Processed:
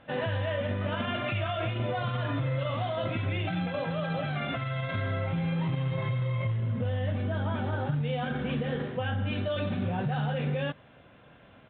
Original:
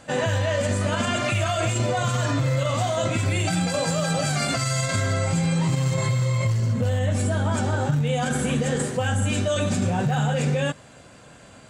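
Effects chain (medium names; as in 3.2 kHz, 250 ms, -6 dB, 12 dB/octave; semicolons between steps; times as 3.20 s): resampled via 8 kHz; trim -7 dB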